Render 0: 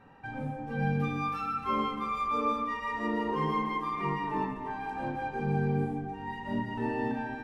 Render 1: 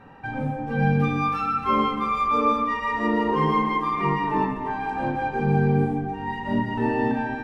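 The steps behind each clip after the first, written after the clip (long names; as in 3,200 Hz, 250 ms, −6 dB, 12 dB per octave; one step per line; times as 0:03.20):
high-shelf EQ 6,400 Hz −6.5 dB
level +8.5 dB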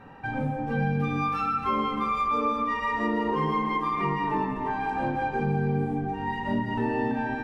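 downward compressor 3 to 1, threshold −24 dBFS, peak gain reduction 6.5 dB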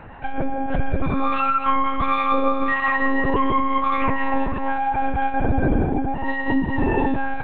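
one-pitch LPC vocoder at 8 kHz 270 Hz
level +7.5 dB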